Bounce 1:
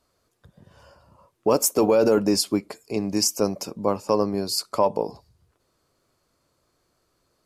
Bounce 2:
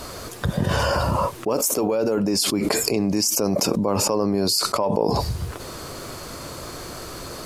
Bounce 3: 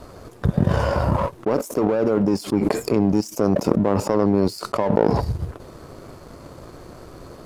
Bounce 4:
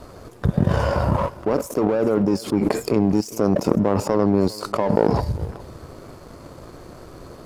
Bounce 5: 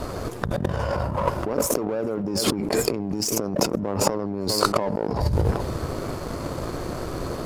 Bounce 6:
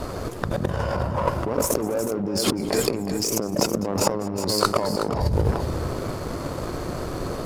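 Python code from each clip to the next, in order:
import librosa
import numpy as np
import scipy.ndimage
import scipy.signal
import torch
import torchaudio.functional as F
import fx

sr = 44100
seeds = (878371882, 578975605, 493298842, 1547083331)

y1 = fx.env_flatten(x, sr, amount_pct=100)
y1 = F.gain(torch.from_numpy(y1), -5.0).numpy()
y2 = fx.tilt_shelf(y1, sr, db=7.5, hz=1400.0)
y2 = fx.power_curve(y2, sr, exponent=1.4)
y3 = y2 + 10.0 ** (-19.5 / 20.0) * np.pad(y2, (int(405 * sr / 1000.0), 0))[:len(y2)]
y4 = fx.over_compress(y3, sr, threshold_db=-28.0, ratio=-1.0)
y4 = F.gain(torch.from_numpy(y4), 3.5).numpy()
y5 = fx.echo_multitap(y4, sr, ms=(202, 367), db=(-19.0, -9.5))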